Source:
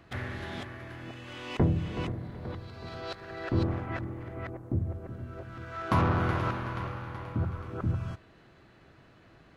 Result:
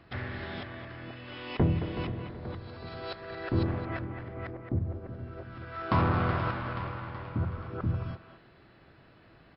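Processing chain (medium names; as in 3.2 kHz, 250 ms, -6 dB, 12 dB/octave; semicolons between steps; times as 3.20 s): speakerphone echo 220 ms, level -8 dB; MP3 64 kbps 12 kHz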